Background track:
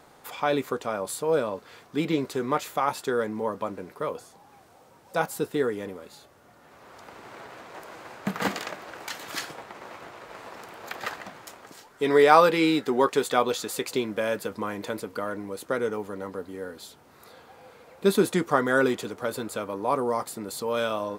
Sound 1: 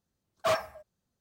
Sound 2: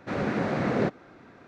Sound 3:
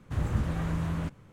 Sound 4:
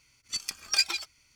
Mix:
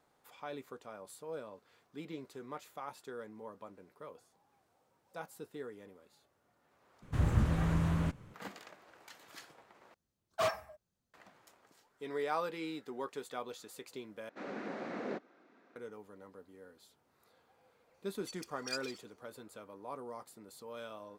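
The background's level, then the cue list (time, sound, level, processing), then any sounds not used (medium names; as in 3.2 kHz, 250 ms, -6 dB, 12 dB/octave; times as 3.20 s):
background track -19 dB
7.02 s: replace with 3 -0.5 dB
9.94 s: replace with 1 -5 dB
14.29 s: replace with 2 -13 dB + high-pass 220 Hz 24 dB/octave
17.84 s: add 4 -16.5 dB + phase dispersion highs, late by 103 ms, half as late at 720 Hz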